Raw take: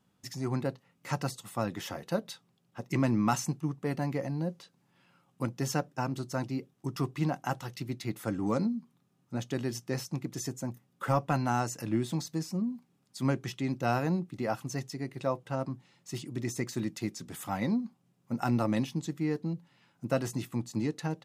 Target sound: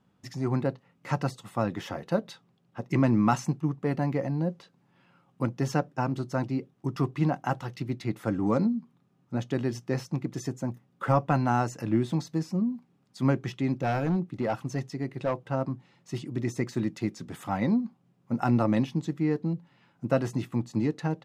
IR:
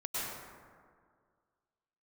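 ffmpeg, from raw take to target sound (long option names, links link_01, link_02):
-filter_complex "[0:a]asettb=1/sr,asplit=3[link_01][link_02][link_03];[link_01]atrim=end=13.754[link_04];[link_02]atrim=start=13.75:end=15.41,asetpts=PTS-STARTPTS,afade=type=in:duration=0.004:curve=qsin,afade=type=out:start_time=1.656:duration=0.004:curve=qsin,asoftclip=type=hard:threshold=-26dB[link_05];[link_03]atrim=start=15.406[link_06];[link_04][link_05]acrossfade=duration=0.004:curve1=hsin:curve2=qsin[link_07];[link_07][link_06]acrossfade=duration=0.004:curve1=qsin:curve2=hsin,lowpass=frequency=2200:poles=1,volume=4.5dB"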